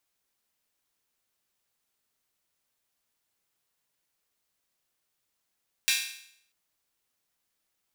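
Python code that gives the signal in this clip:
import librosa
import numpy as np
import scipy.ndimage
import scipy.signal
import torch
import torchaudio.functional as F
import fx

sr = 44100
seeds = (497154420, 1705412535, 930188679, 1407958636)

y = fx.drum_hat_open(sr, length_s=0.64, from_hz=2400.0, decay_s=0.67)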